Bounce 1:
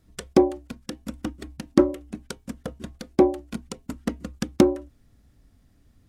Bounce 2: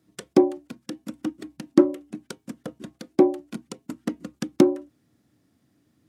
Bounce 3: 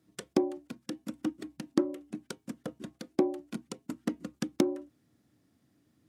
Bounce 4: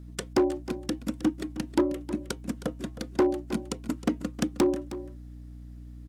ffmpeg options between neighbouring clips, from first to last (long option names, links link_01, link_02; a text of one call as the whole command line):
ffmpeg -i in.wav -af "highpass=frequency=120:width=0.5412,highpass=frequency=120:width=1.3066,equalizer=frequency=320:width=6:gain=9,volume=-2.5dB" out.wav
ffmpeg -i in.wav -af "acompressor=threshold=-19dB:ratio=5,volume=-3.5dB" out.wav
ffmpeg -i in.wav -af "asoftclip=type=hard:threshold=-24.5dB,aeval=exprs='val(0)+0.00316*(sin(2*PI*60*n/s)+sin(2*PI*2*60*n/s)/2+sin(2*PI*3*60*n/s)/3+sin(2*PI*4*60*n/s)/4+sin(2*PI*5*60*n/s)/5)':channel_layout=same,aecho=1:1:314:0.2,volume=7.5dB" out.wav